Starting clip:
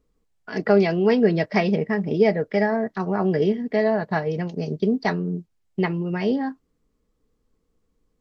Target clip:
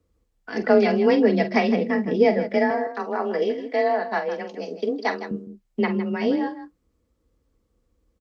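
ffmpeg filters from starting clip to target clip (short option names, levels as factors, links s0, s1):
-filter_complex "[0:a]asettb=1/sr,asplit=3[s0][s1][s2];[s0]atrim=end=2.704[s3];[s1]atrim=start=2.7:end=5.31,asetpts=PTS-STARTPTS,afade=t=in:d=0.004:c=qsin,afade=t=out:st=2.606:d=0.004:c=qsin,highpass=360[s4];[s2]atrim=start=5.306[s5];[s3][s4]acrossfade=d=0.004:c1=hsin:c2=qsin[s6];[s6][s5]acrossfade=d=0.004:c1=qsin:c2=hsin,afreqshift=29,aecho=1:1:46|159:0.282|0.251"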